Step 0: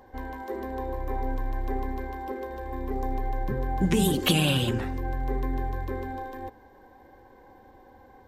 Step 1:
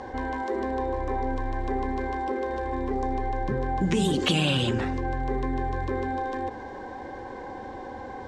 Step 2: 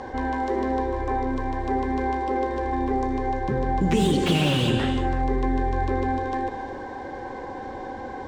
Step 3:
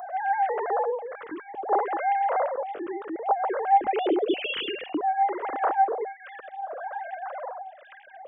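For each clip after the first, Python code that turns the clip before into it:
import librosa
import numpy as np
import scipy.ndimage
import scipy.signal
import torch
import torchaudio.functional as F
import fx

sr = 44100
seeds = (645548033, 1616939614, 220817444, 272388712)

y1 = scipy.signal.sosfilt(scipy.signal.butter(4, 7800.0, 'lowpass', fs=sr, output='sos'), x)
y1 = fx.low_shelf(y1, sr, hz=66.0, db=-9.0)
y1 = fx.env_flatten(y1, sr, amount_pct=50)
y1 = y1 * librosa.db_to_amplitude(-1.5)
y2 = fx.rev_gated(y1, sr, seeds[0], gate_ms=390, shape='flat', drr_db=7.0)
y2 = fx.slew_limit(y2, sr, full_power_hz=110.0)
y2 = y2 * librosa.db_to_amplitude(2.5)
y3 = fx.sine_speech(y2, sr)
y3 = fx.wow_flutter(y3, sr, seeds[1], rate_hz=2.1, depth_cents=18.0)
y3 = fx.stagger_phaser(y3, sr, hz=0.6)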